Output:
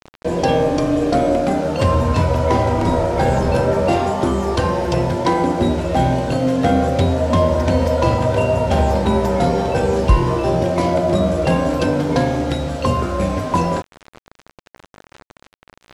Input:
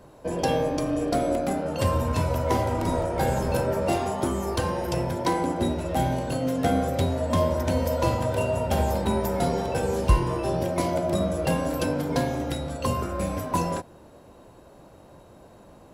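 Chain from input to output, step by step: in parallel at -1 dB: limiter -16 dBFS, peak gain reduction 8.5 dB; on the sum: requantised 6-bit, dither none; air absorption 79 m; gain +3.5 dB

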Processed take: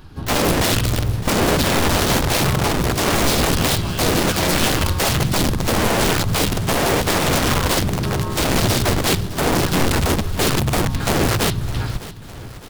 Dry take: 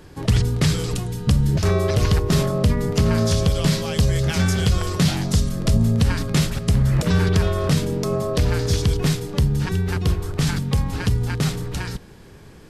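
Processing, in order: dynamic EQ 110 Hz, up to +6 dB, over -32 dBFS, Q 1.9; fixed phaser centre 2200 Hz, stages 6; wrapped overs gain 16 dB; harmoniser -12 st -5 dB, -3 st -1 dB, +7 st -10 dB; on a send: feedback echo 0.609 s, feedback 54%, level -16.5 dB

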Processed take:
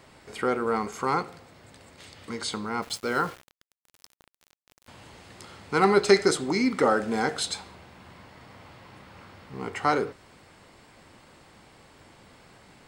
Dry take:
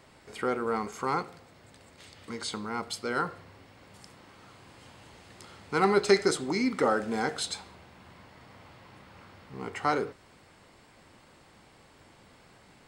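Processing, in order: 2.82–4.88 sample gate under -43.5 dBFS; gain +3.5 dB

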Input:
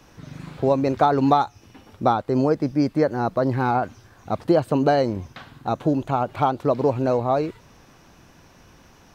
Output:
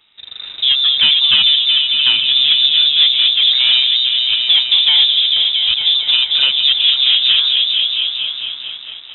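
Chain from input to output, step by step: repeats that get brighter 0.225 s, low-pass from 400 Hz, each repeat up 1 oct, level 0 dB; sample leveller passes 2; inverted band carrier 3800 Hz; gain -1 dB

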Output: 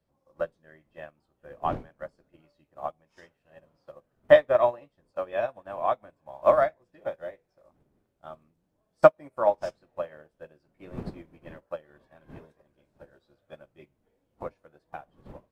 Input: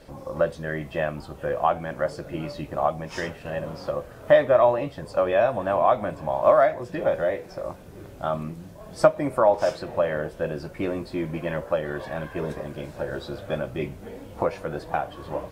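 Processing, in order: wind noise 260 Hz -34 dBFS; low shelf 330 Hz -4.5 dB; upward expander 2.5:1, over -36 dBFS; gain +3.5 dB

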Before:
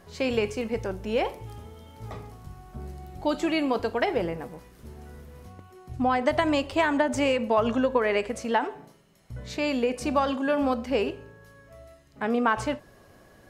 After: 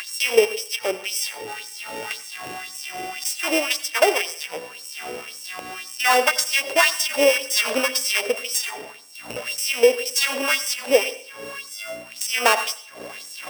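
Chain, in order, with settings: sample sorter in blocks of 16 samples; hum 60 Hz, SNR 16 dB; LFO high-pass sine 1.9 Hz 450–7000 Hz; upward compressor, threshold -26 dBFS; on a send: reverb RT60 0.50 s, pre-delay 81 ms, DRR 15 dB; on the sum: gain +5 dB

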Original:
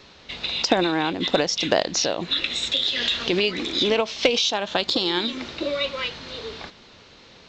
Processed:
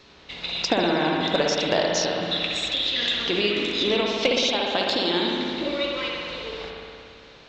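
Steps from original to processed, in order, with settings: spring tank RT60 2.4 s, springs 58 ms, chirp 25 ms, DRR -1.5 dB; gain -3.5 dB

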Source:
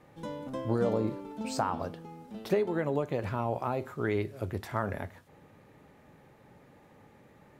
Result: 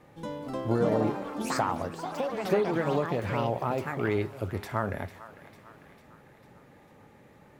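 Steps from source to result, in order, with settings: thinning echo 0.449 s, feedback 63%, high-pass 810 Hz, level -14 dB; echoes that change speed 0.309 s, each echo +5 st, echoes 3, each echo -6 dB; gain +2 dB

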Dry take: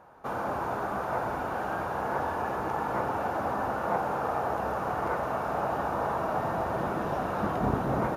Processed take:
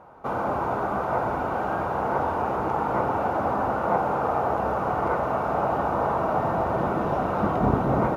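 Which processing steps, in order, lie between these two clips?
high shelf 3400 Hz -11 dB; notch 1700 Hz, Q 8.3; gain +6 dB

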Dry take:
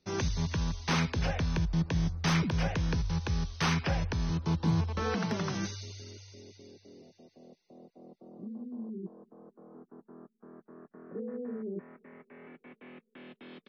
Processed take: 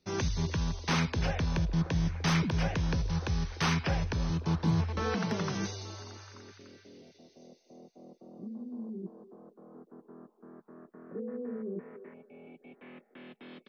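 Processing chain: spectral delete 12.14–12.78, 850–2200 Hz; delay with a stepping band-pass 0.294 s, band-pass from 440 Hz, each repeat 0.7 oct, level -10 dB

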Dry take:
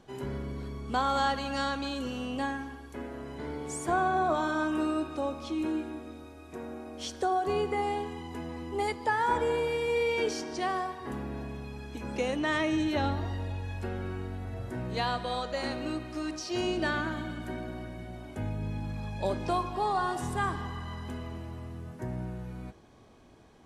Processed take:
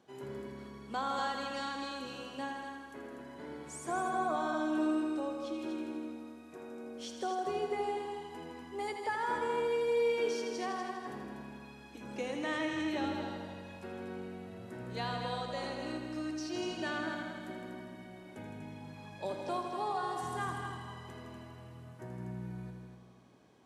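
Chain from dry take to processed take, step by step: HPF 140 Hz 12 dB/oct; notches 50/100/150/200/250 Hz; multi-head echo 81 ms, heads all three, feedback 45%, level -9 dB; gain -7.5 dB

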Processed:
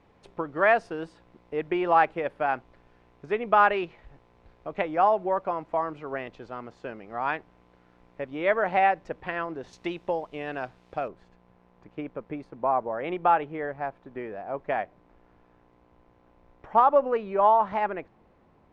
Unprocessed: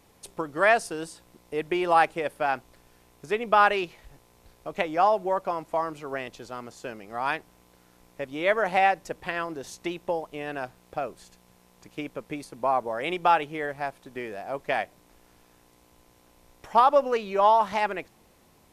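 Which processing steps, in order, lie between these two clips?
LPF 2300 Hz 12 dB/oct, from 9.73 s 3800 Hz, from 11.08 s 1600 Hz

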